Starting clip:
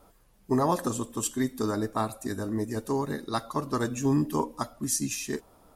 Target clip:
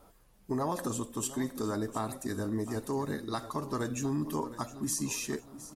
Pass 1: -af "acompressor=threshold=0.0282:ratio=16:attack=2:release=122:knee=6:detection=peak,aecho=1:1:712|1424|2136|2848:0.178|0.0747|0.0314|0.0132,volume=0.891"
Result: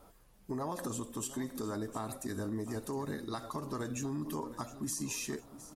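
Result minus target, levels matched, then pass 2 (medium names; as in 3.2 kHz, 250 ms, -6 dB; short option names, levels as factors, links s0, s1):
compression: peak gain reduction +5.5 dB
-af "acompressor=threshold=0.0562:ratio=16:attack=2:release=122:knee=6:detection=peak,aecho=1:1:712|1424|2136|2848:0.178|0.0747|0.0314|0.0132,volume=0.891"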